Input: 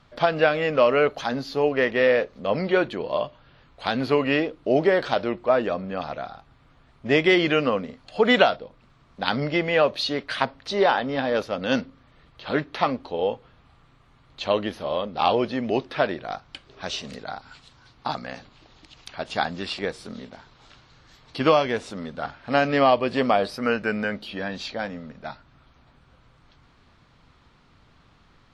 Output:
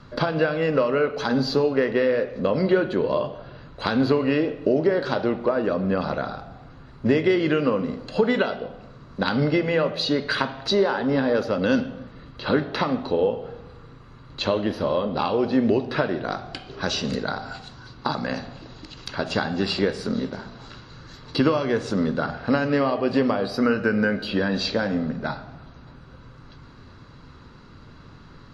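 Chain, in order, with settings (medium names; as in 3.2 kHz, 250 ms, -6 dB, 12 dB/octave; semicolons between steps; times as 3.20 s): compression 6:1, threshold -29 dBFS, peak gain reduction 16.5 dB; reverberation RT60 1.1 s, pre-delay 3 ms, DRR 9.5 dB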